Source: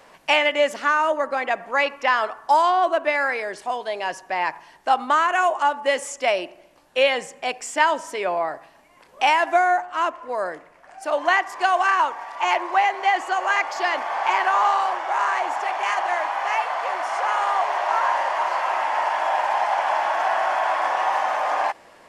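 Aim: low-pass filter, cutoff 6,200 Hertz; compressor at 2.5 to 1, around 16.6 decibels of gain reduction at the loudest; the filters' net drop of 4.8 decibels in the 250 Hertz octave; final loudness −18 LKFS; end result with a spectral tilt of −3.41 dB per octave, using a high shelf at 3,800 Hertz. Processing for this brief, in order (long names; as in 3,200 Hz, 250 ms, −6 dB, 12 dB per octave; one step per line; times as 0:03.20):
low-pass filter 6,200 Hz
parametric band 250 Hz −7 dB
high-shelf EQ 3,800 Hz +5.5 dB
downward compressor 2.5 to 1, threshold −40 dBFS
level +18 dB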